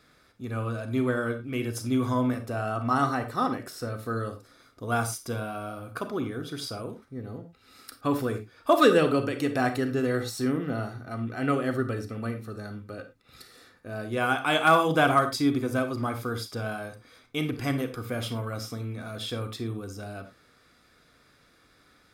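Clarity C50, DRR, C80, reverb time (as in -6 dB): 10.5 dB, 8.0 dB, 15.5 dB, not exponential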